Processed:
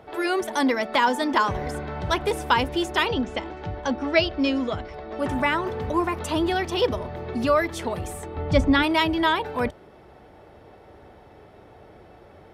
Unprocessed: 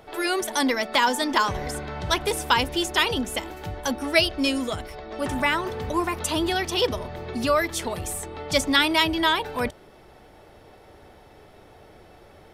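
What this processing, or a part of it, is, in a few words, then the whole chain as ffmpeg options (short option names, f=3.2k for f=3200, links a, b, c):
through cloth: -filter_complex "[0:a]asettb=1/sr,asplit=3[a][b][c];[a]atrim=end=3.074[d];[b]atrim=start=3.07:end=4.94,asetpts=PTS-STARTPTS,afade=t=in:d=0.004:c=qsin,afade=t=out:st=1.866:d=0.004:c=qsin,lowpass=f=6.1k:w=0.5412,lowpass=f=6.1k:w=1.3066[e];[c]atrim=start=4.936[f];[d][e]acrossfade=d=0.004:c1=hsin:c2=qsin[g];[g][f]acrossfade=d=0.004:c1=qsin:c2=hsin,highshelf=f=3.2k:g=-12,asplit=3[h][i][j];[h]afade=t=out:st=8.35:d=0.02[k];[i]aemphasis=mode=reproduction:type=bsi,afade=t=in:st=8.35:d=0.02,afade=t=out:st=8.82:d=0.02[l];[j]afade=t=in:st=8.82:d=0.02[m];[k][l][m]amix=inputs=3:normalize=0,highpass=44,volume=2dB"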